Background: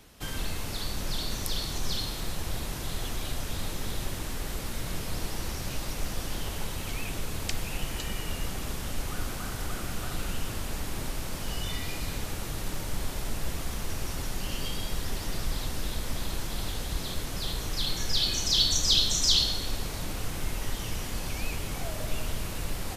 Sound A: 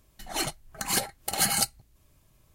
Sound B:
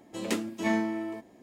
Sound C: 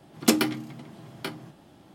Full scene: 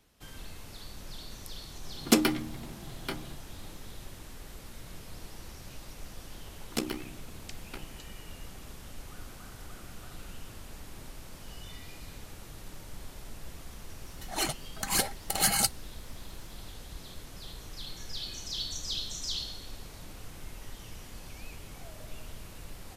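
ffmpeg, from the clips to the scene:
-filter_complex "[3:a]asplit=2[a][b];[0:a]volume=-12dB[c];[b]tremolo=f=64:d=0.947[d];[a]atrim=end=1.94,asetpts=PTS-STARTPTS,volume=-2dB,afade=t=in:d=0.004:c=hsin,afade=t=out:st=1.936:d=0.004:c=hsin,adelay=1840[e];[d]atrim=end=1.94,asetpts=PTS-STARTPTS,volume=-7.5dB,afade=t=in:d=0.004:c=hsin,afade=t=out:st=1.936:d=0.004:c=hsin,adelay=6490[f];[1:a]atrim=end=2.54,asetpts=PTS-STARTPTS,volume=-1dB,afade=t=in:d=0.004:c=hsin,afade=t=out:st=2.536:d=0.004:c=hsin,adelay=14020[g];[c][e][f][g]amix=inputs=4:normalize=0"

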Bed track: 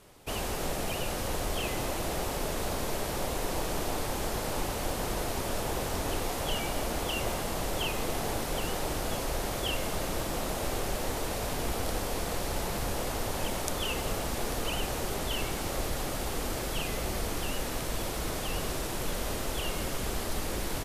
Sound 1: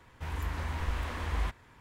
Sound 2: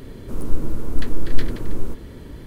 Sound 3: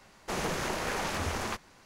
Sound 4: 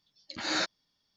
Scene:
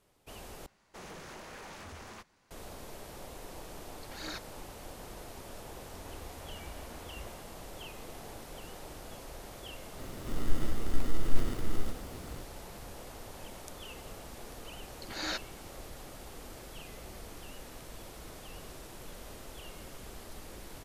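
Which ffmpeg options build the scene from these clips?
-filter_complex "[4:a]asplit=2[a][b];[0:a]volume=-14dB[c];[3:a]asoftclip=type=tanh:threshold=-29dB[d];[a]aphaser=in_gain=1:out_gain=1:delay=3:decay=0.5:speed=1.8:type=triangular[e];[2:a]acrusher=samples=27:mix=1:aa=0.000001[f];[c]asplit=2[g][h];[g]atrim=end=0.664[i];[d]atrim=end=1.85,asetpts=PTS-STARTPTS,volume=-12dB[j];[h]atrim=start=2.506[k];[e]atrim=end=1.16,asetpts=PTS-STARTPTS,volume=-13.5dB,afade=t=in:d=0.004:c=hsin,afade=t=out:st=1.156:d=0.004:c=hsin,adelay=164493S[l];[1:a]atrim=end=1.8,asetpts=PTS-STARTPTS,volume=-17.5dB,afade=t=in:d=0.004:c=hsin,afade=t=out:st=1.796:d=0.004:c=hsin,adelay=5790[m];[f]atrim=end=2.46,asetpts=PTS-STARTPTS,volume=-8dB,afade=t=in:d=0.004:c=hsin,afade=t=out:st=2.456:d=0.004:c=hsin,adelay=9980[n];[b]atrim=end=1.16,asetpts=PTS-STARTPTS,volume=-6dB,afade=t=in:d=0.004:c=hsin,afade=t=out:st=1.156:d=0.004:c=hsin,adelay=14720[o];[i][j]acrossfade=d=0.004:c1=hsin:c2=hsin[p];[p][k]acrossfade=d=0.004:c1=hsin:c2=hsin[q];[q][l][m][n][o]amix=inputs=5:normalize=0"

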